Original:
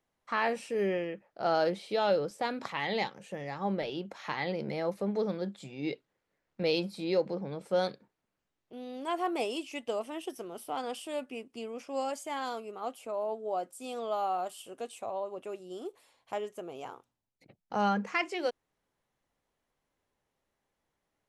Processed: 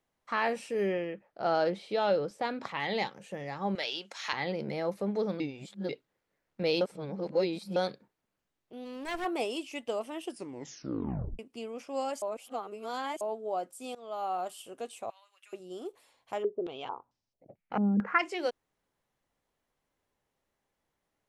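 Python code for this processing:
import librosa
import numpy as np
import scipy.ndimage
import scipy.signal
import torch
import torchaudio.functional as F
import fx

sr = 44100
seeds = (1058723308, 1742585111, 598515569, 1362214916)

y = fx.high_shelf(x, sr, hz=7300.0, db=-10.0, at=(0.92, 2.8))
y = fx.weighting(y, sr, curve='ITU-R 468', at=(3.75, 4.33))
y = fx.lower_of_two(y, sr, delay_ms=0.39, at=(8.84, 9.24), fade=0.02)
y = fx.cheby1_highpass(y, sr, hz=1800.0, order=3, at=(15.1, 15.53))
y = fx.filter_held_lowpass(y, sr, hz=4.5, low_hz=270.0, high_hz=5400.0, at=(16.42, 18.18), fade=0.02)
y = fx.edit(y, sr, fx.reverse_span(start_s=5.4, length_s=0.49),
    fx.reverse_span(start_s=6.81, length_s=0.95),
    fx.tape_stop(start_s=10.24, length_s=1.15),
    fx.reverse_span(start_s=12.22, length_s=0.99),
    fx.fade_in_from(start_s=13.95, length_s=0.59, curve='qsin', floor_db=-20.0), tone=tone)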